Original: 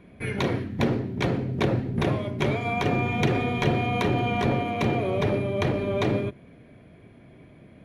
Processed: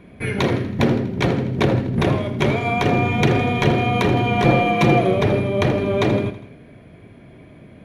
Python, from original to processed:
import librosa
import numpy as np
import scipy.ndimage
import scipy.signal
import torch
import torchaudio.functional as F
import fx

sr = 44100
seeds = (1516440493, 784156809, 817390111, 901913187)

y = fx.comb(x, sr, ms=5.9, depth=1.0, at=(4.44, 5.14))
y = fx.echo_feedback(y, sr, ms=81, feedback_pct=52, wet_db=-13.0)
y = y * 10.0 ** (6.0 / 20.0)